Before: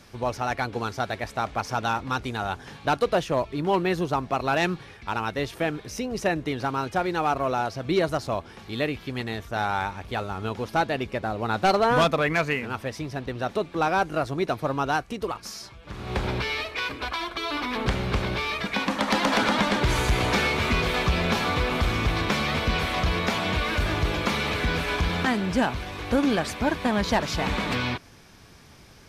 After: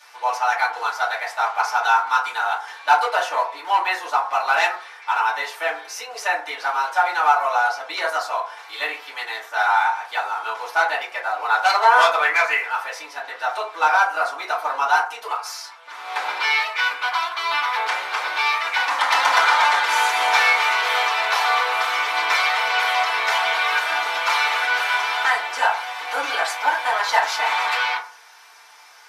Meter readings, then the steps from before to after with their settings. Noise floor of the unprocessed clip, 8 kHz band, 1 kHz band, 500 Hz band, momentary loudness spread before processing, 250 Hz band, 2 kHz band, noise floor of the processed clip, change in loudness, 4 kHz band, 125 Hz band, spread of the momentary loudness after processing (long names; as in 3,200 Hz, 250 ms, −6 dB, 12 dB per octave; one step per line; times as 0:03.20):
−48 dBFS, +5.5 dB, +9.0 dB, −2.5 dB, 9 LU, below −20 dB, +9.0 dB, −42 dBFS, +6.0 dB, +5.5 dB, below −40 dB, 10 LU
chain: high-pass filter 800 Hz 24 dB per octave
feedback delay network reverb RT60 0.43 s, low-frequency decay 0.75×, high-frequency decay 0.4×, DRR −8.5 dB